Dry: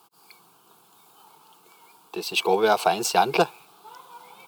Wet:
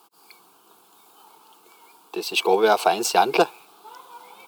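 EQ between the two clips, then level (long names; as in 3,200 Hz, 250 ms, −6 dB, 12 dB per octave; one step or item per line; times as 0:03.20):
low shelf with overshoot 200 Hz −7 dB, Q 1.5
+1.5 dB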